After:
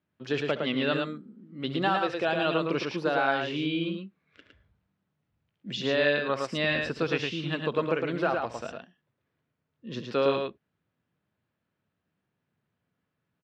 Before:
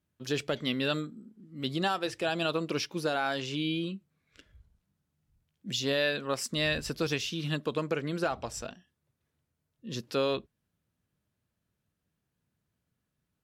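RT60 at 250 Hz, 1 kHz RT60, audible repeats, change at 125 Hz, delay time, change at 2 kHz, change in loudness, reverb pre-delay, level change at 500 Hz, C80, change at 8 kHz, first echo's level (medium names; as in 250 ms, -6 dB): no reverb, no reverb, 2, +0.5 dB, 68 ms, +4.5 dB, +3.0 dB, no reverb, +4.5 dB, no reverb, -11.0 dB, -15.0 dB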